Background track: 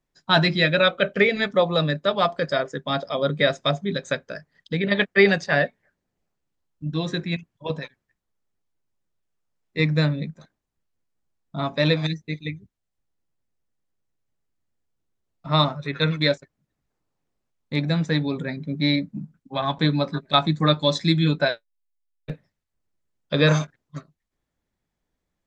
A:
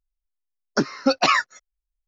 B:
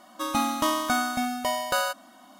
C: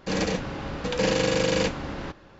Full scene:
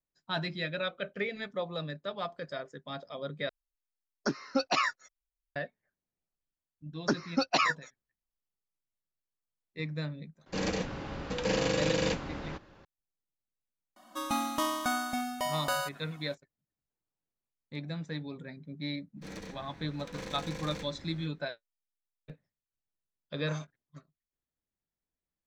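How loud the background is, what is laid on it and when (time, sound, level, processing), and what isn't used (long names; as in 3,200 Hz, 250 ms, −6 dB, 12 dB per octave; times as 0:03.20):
background track −15.5 dB
0:03.49: overwrite with A −10 dB
0:06.31: mix in A −15.5 dB + harmonic and percussive parts rebalanced percussive +8 dB
0:10.46: mix in C −6 dB
0:13.96: mix in B −6 dB
0:19.15: mix in C −17 dB, fades 0.10 s + lower of the sound and its delayed copy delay 0.5 ms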